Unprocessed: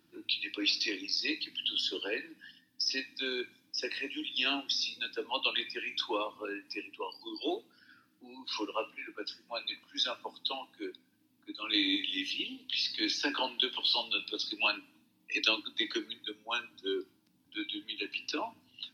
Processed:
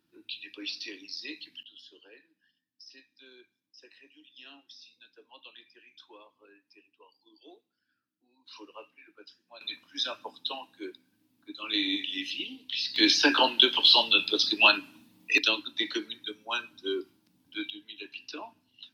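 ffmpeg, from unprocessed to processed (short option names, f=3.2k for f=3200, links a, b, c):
-af "asetnsamples=n=441:p=0,asendcmd='1.63 volume volume -19.5dB;8.46 volume volume -12dB;9.61 volume volume 0.5dB;12.96 volume volume 10dB;15.38 volume volume 2.5dB;17.7 volume volume -5.5dB',volume=-7dB"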